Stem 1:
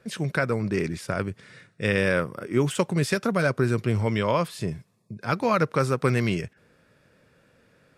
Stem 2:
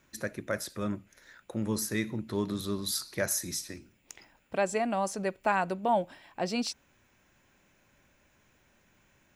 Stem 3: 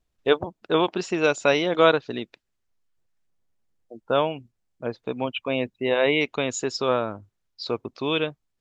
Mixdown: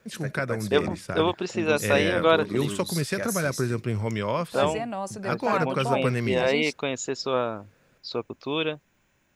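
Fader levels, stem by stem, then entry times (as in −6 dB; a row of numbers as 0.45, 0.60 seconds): −3.5, −2.0, −2.5 decibels; 0.00, 0.00, 0.45 seconds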